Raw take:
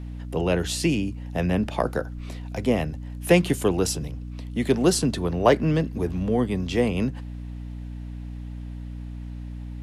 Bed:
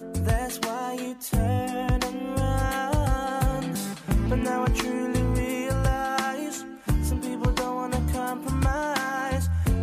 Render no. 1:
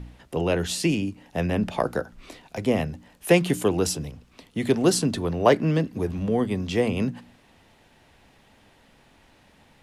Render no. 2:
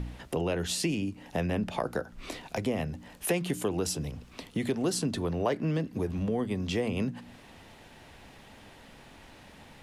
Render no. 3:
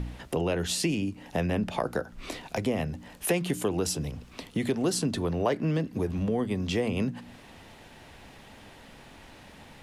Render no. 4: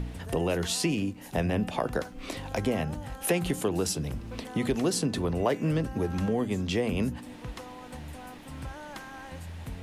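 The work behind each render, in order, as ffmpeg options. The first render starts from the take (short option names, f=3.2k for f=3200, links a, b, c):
-af "bandreject=f=60:t=h:w=4,bandreject=f=120:t=h:w=4,bandreject=f=180:t=h:w=4,bandreject=f=240:t=h:w=4,bandreject=f=300:t=h:w=4"
-filter_complex "[0:a]asplit=2[a][b];[b]alimiter=limit=-14.5dB:level=0:latency=1,volume=-2dB[c];[a][c]amix=inputs=2:normalize=0,acompressor=threshold=-32dB:ratio=2.5"
-af "volume=2dB"
-filter_complex "[1:a]volume=-16dB[a];[0:a][a]amix=inputs=2:normalize=0"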